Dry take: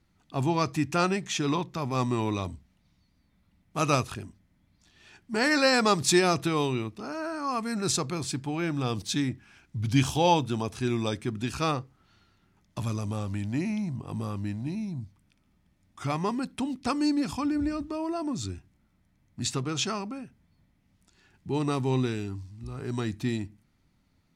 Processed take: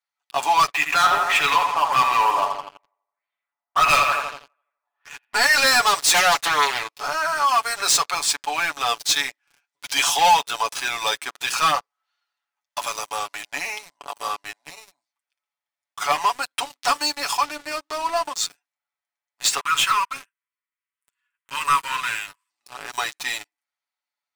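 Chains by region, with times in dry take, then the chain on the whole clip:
0.67–5.34 s: LFO low-pass sine 1.6 Hz 890–3000 Hz + filtered feedback delay 83 ms, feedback 61%, low-pass 4 kHz, level -8.5 dB
6.14–6.94 s: hum notches 60/120/180 Hz + loudspeaker Doppler distortion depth 0.48 ms
19.60–22.50 s: waveshaping leveller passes 1 + brick-wall FIR high-pass 910 Hz + high-order bell 5 kHz -13 dB 1 oct
whole clip: high-pass 720 Hz 24 dB/octave; waveshaping leveller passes 5; comb 7 ms, depth 65%; trim -4 dB

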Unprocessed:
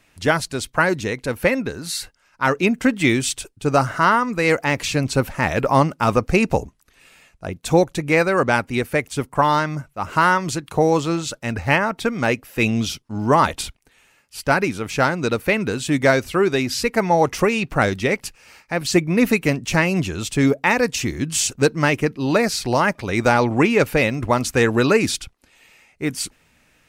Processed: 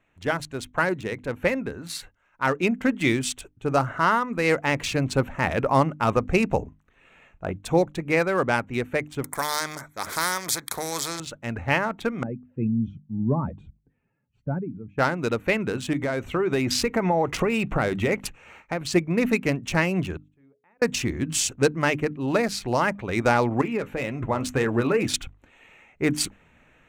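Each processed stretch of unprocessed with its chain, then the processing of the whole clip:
6.61–7.52 s: treble shelf 6 kHz -6.5 dB + doubling 39 ms -14 dB
9.24–11.20 s: Butterworth band-stop 2.8 kHz, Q 2.4 + tilt EQ +3.5 dB/octave + spectrum-flattening compressor 2:1
12.23–14.98 s: spectral contrast enhancement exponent 1.7 + band-pass filter 150 Hz, Q 1.6
15.93–18.91 s: band-stop 1.7 kHz, Q 23 + compression 10:1, threshold -20 dBFS
20.16–20.82 s: low-pass 2.2 kHz 6 dB/octave + hum notches 60/120/180/240/300/360/420/480 Hz + inverted gate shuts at -24 dBFS, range -41 dB
23.61–25.14 s: compression 4:1, threshold -16 dBFS + flange 1.9 Hz, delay 4.6 ms, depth 7.9 ms, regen +57%
whole clip: local Wiener filter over 9 samples; hum notches 50/100/150/200/250/300 Hz; level rider; trim -7.5 dB

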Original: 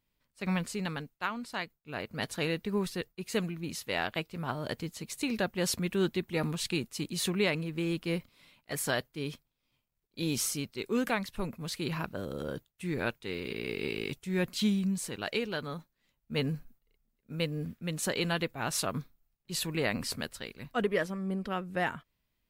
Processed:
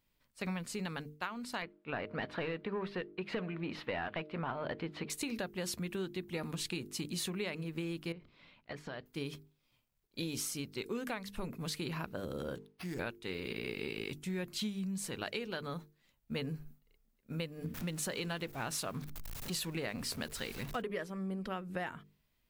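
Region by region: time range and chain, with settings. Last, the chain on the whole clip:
1.62–5.10 s: de-hum 307.4 Hz, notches 2 + overdrive pedal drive 19 dB, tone 3.4 kHz, clips at -16.5 dBFS + distance through air 390 m
8.12–9.06 s: compression 10:1, threshold -39 dBFS + distance through air 220 m
12.55–12.99 s: compression 1.5:1, threshold -50 dBFS + careless resampling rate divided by 6×, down none, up hold + loudspeaker Doppler distortion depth 0.1 ms
17.74–20.82 s: jump at every zero crossing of -43.5 dBFS + upward compressor, threshold -40 dBFS
whole clip: hum notches 50/100/150/200/250/300/350/400/450 Hz; compression, threshold -38 dBFS; trim +2.5 dB

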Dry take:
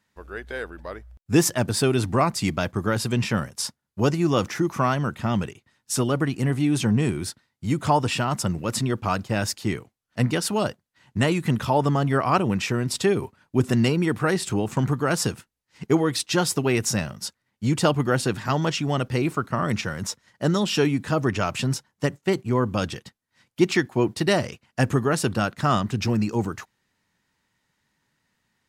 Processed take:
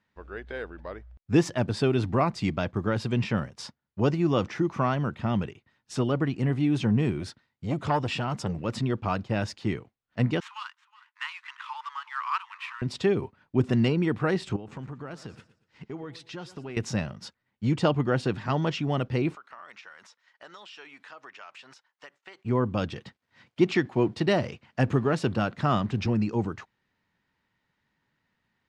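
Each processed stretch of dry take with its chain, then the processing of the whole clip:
7.20–8.58 s: treble shelf 5.4 kHz +4.5 dB + transformer saturation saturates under 710 Hz
10.40–12.82 s: median filter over 9 samples + steep high-pass 970 Hz 72 dB/octave + delay 366 ms -20.5 dB
14.56–16.77 s: compression 3:1, threshold -37 dBFS + modulated delay 118 ms, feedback 34%, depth 52 cents, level -16 dB
19.35–22.45 s: high-pass 990 Hz + compression 3:1, threshold -43 dBFS
22.96–26.06 s: companding laws mixed up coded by mu + high-pass 61 Hz
whole clip: dynamic bell 1.5 kHz, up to -3 dB, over -39 dBFS, Q 1.1; low-pass 3.5 kHz 12 dB/octave; trim -2.5 dB

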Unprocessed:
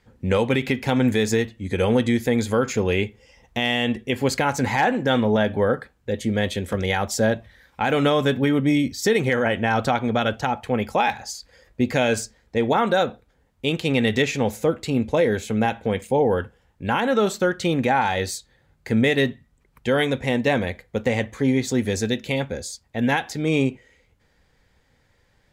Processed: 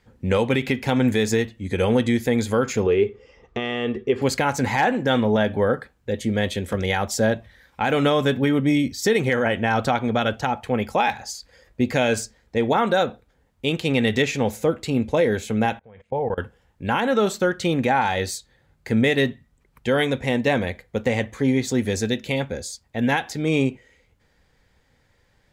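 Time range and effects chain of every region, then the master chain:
2.86–4.22 s: compression 2:1, threshold -26 dBFS + distance through air 120 m + small resonant body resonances 410/1200 Hz, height 16 dB
15.79–16.38 s: low-pass 1.9 kHz + peaking EQ 290 Hz -10.5 dB 0.95 oct + level held to a coarse grid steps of 23 dB
whole clip: none

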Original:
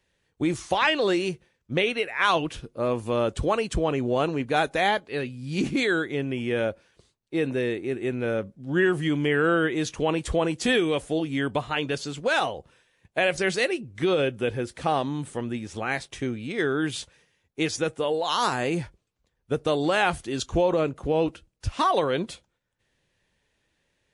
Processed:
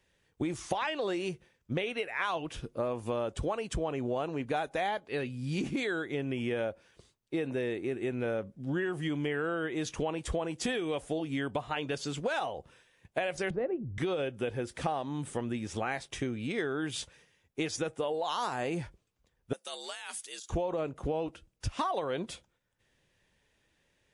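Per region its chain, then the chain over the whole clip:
13.50–13.98 s: low-pass 1.2 kHz + tilt EQ -3.5 dB/octave + three bands expanded up and down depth 40%
19.53–20.50 s: differentiator + compressor with a negative ratio -41 dBFS + frequency shift +68 Hz
whole clip: band-stop 4.2 kHz, Q 18; dynamic bell 750 Hz, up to +5 dB, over -35 dBFS, Q 1.4; compression 6:1, threshold -30 dBFS

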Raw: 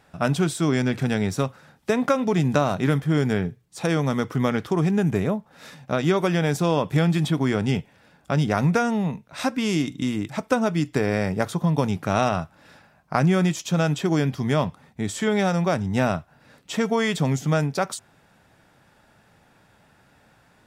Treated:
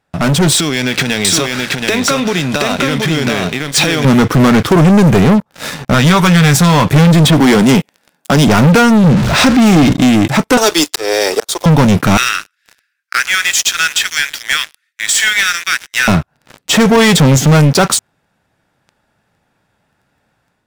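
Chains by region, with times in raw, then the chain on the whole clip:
0.52–4.05 s: compression 16:1, threshold -32 dBFS + frequency weighting D + delay 726 ms -4 dB
5.94–6.85 s: peaking EQ 370 Hz -13.5 dB 0.95 oct + doubling 17 ms -13 dB
7.40–8.48 s: high-pass 180 Hz 24 dB/octave + treble shelf 6.9 kHz +11 dB
9.04–9.93 s: jump at every zero crossing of -33 dBFS + low-pass 6.2 kHz + bass shelf 130 Hz +9 dB
10.57–11.66 s: steep high-pass 360 Hz + resonant high shelf 2.9 kHz +9 dB, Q 1.5 + slow attack 447 ms
12.17–16.08 s: steep high-pass 1.5 kHz 48 dB/octave + delay 111 ms -19.5 dB
whole clip: dynamic bell 630 Hz, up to -6 dB, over -37 dBFS, Q 2.4; waveshaping leveller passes 5; level rider gain up to 5 dB

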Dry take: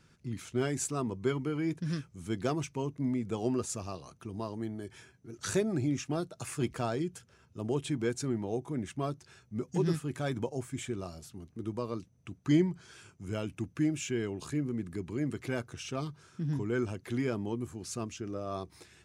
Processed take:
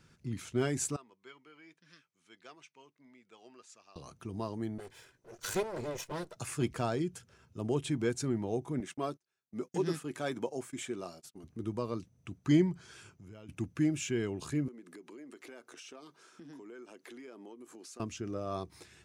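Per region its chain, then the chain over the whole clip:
0.96–3.96 s: band-pass 140–2700 Hz + differentiator
4.78–6.36 s: comb filter that takes the minimum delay 2 ms + bass shelf 170 Hz -9.5 dB
8.80–11.44 s: high-pass 250 Hz + gate -52 dBFS, range -30 dB
13.09–13.49 s: peaking EQ 8.6 kHz -9 dB 0.47 oct + compression 3:1, threshold -52 dBFS
14.68–18.00 s: high-pass 280 Hz 24 dB/octave + compression, threshold -47 dBFS
whole clip: none

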